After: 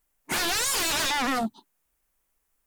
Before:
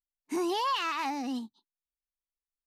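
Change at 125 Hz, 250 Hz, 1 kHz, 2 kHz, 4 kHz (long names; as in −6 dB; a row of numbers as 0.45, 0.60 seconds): can't be measured, +1.0 dB, +1.5 dB, +10.5 dB, +10.0 dB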